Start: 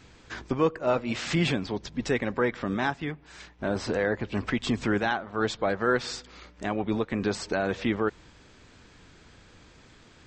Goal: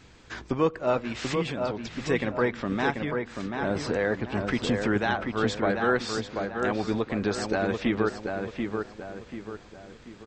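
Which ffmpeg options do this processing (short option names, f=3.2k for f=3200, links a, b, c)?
-filter_complex "[0:a]asettb=1/sr,asplit=3[a][b][c];[a]atrim=end=1.074[d];[b]atrim=start=1.07:end=2.09,asetpts=PTS-STARTPTS,afade=t=in:d=0.004:c=qsin,afade=t=out:st=1.016:d=0.004:c=qsin,acompressor=threshold=-32dB:ratio=2.5[e];[c]atrim=start=2.086[f];[d][e]acrossfade=d=0.004:c1=hsin:c2=qsin[g];[g][f]acrossfade=d=0.004:c1=qsin:c2=hsin,asplit=2[h][i];[i]adelay=737,lowpass=f=2.7k:p=1,volume=-4.5dB,asplit=2[j][k];[k]adelay=737,lowpass=f=2.7k:p=1,volume=0.42,asplit=2[l][m];[m]adelay=737,lowpass=f=2.7k:p=1,volume=0.42,asplit=2[n][o];[o]adelay=737,lowpass=f=2.7k:p=1,volume=0.42,asplit=2[p][q];[q]adelay=737,lowpass=f=2.7k:p=1,volume=0.42[r];[j][l][n][p][r]amix=inputs=5:normalize=0[s];[h][s]amix=inputs=2:normalize=0"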